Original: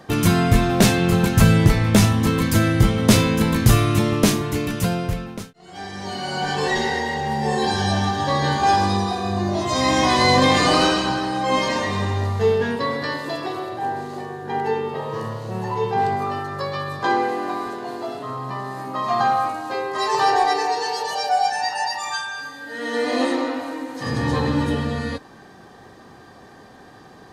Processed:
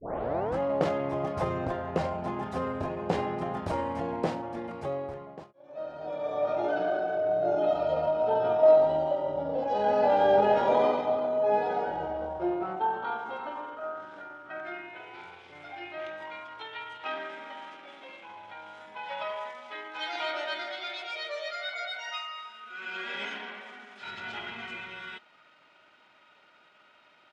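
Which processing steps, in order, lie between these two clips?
tape start at the beginning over 0.58 s; band-pass sweep 820 Hz -> 2800 Hz, 12.26–15.07; pitch shift -4 st

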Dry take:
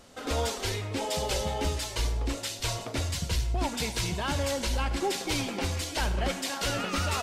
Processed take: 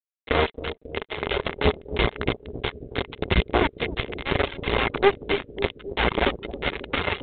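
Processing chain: de-hum 256.1 Hz, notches 28; bit-crush 4-bit; small resonant body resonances 410/2100 Hz, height 9 dB, ringing for 35 ms; reverb removal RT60 0.71 s; analogue delay 0.271 s, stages 1024, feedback 63%, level -11 dB; gain +7 dB; G.726 32 kbps 8000 Hz

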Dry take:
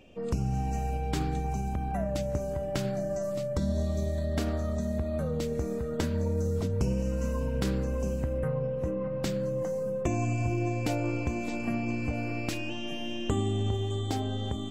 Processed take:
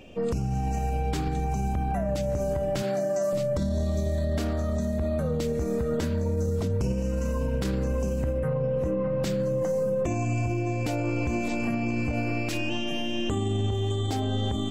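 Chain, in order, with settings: 2.82–3.33 Bessel high-pass 290 Hz, order 2; limiter -27 dBFS, peak gain reduction 10 dB; gain +7.5 dB

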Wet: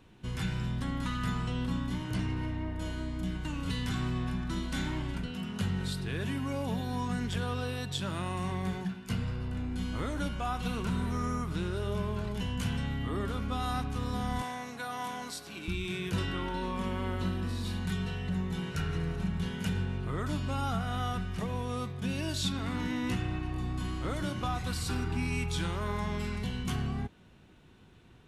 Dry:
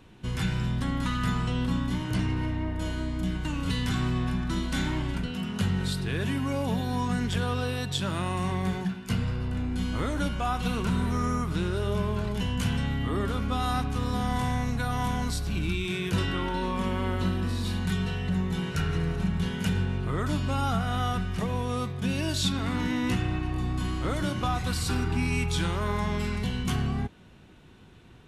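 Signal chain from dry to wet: 14.42–15.68 HPF 340 Hz 12 dB/oct; gain -5 dB

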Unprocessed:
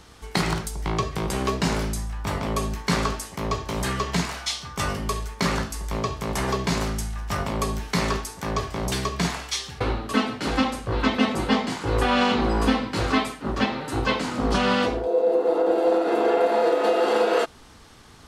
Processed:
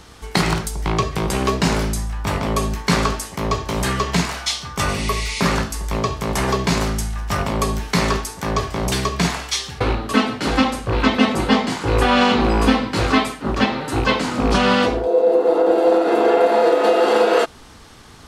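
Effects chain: rattling part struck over -23 dBFS, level -25 dBFS; spectral repair 4.91–5.43, 1900–11000 Hz both; gain +5.5 dB

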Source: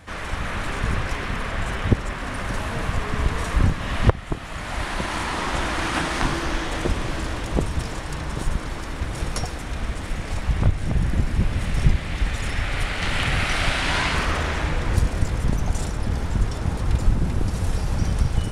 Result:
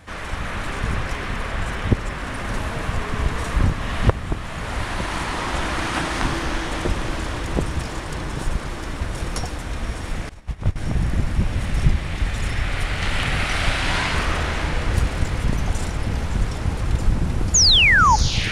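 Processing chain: 17.54–18.16 painted sound fall 820–7200 Hz -14 dBFS; diffused feedback echo 0.626 s, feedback 73%, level -12 dB; 10.29–10.76 upward expander 2.5:1, over -27 dBFS

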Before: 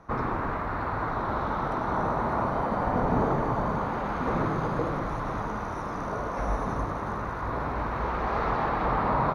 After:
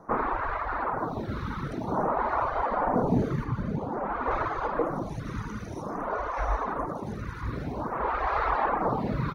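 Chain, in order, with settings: reverb removal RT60 1.1 s; 3.44–4.31 high shelf 3300 Hz -10 dB; photocell phaser 0.51 Hz; gain +5 dB

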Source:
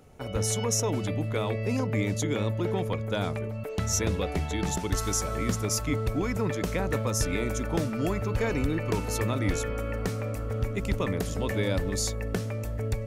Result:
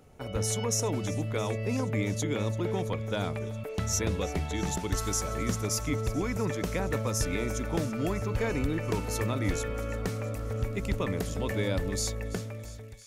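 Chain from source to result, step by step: ending faded out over 0.92 s; thin delay 0.336 s, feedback 76%, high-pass 2300 Hz, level -17 dB; gain -2 dB

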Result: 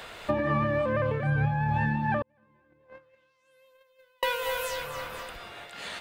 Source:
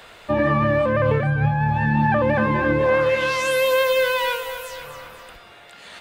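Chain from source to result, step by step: 2.22–4.23 gate -12 dBFS, range -46 dB; compressor 6:1, threshold -26 dBFS, peak gain reduction 11 dB; noise-modulated level, depth 55%; gain +5 dB

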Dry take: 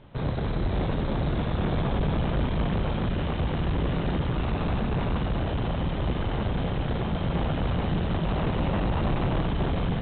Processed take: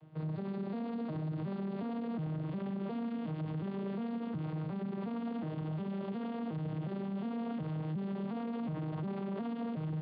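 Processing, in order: arpeggiated vocoder major triad, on D#3, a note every 0.361 s; limiter -28.5 dBFS, peak gain reduction 12 dB; gain -2.5 dB

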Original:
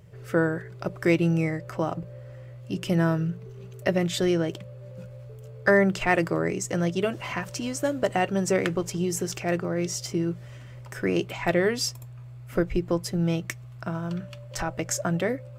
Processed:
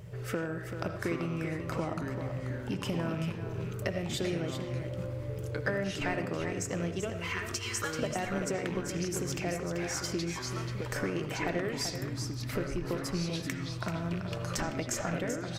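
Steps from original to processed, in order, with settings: rattling part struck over -28 dBFS, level -29 dBFS; 7.12–7.99 HPF 1100 Hz 24 dB/oct; compressor 6:1, threshold -37 dBFS, peak gain reduction 20.5 dB; echo 0.386 s -8.5 dB; reverb RT60 0.40 s, pre-delay 40 ms, DRR 9 dB; echoes that change speed 0.685 s, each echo -4 st, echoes 2, each echo -6 dB; gain +4.5 dB

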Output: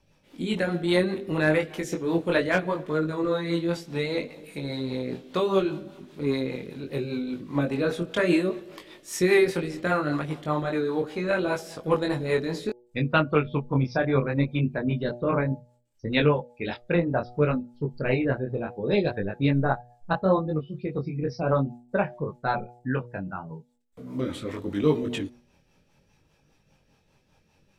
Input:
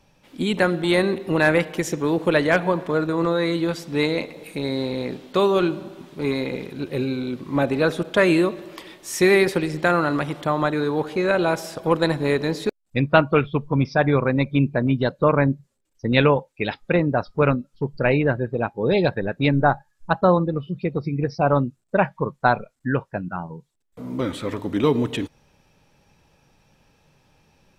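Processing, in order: chorus 0.68 Hz, delay 19.5 ms, depth 4 ms; de-hum 121 Hz, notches 7; rotary speaker horn 5 Hz

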